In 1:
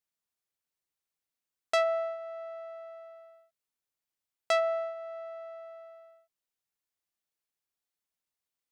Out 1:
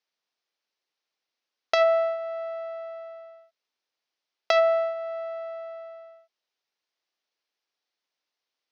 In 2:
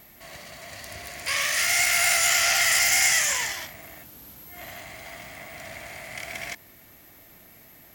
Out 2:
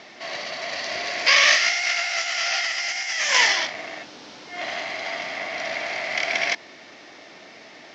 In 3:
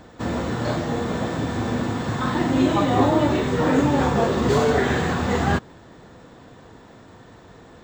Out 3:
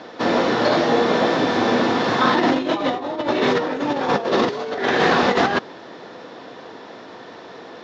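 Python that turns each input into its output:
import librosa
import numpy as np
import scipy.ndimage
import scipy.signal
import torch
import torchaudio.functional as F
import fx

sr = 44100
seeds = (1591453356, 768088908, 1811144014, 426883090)

y = scipy.signal.sosfilt(scipy.signal.butter(2, 360.0, 'highpass', fs=sr, output='sos'), x)
y = fx.peak_eq(y, sr, hz=1300.0, db=-2.5, octaves=1.7)
y = fx.over_compress(y, sr, threshold_db=-27.0, ratio=-0.5)
y = scipy.signal.sosfilt(scipy.signal.butter(8, 5800.0, 'lowpass', fs=sr, output='sos'), y)
y = y * librosa.db_to_amplitude(9.0)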